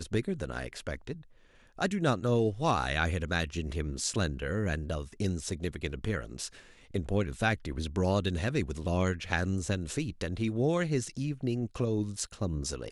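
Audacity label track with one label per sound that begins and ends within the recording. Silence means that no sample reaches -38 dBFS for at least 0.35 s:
1.790000	6.480000	sound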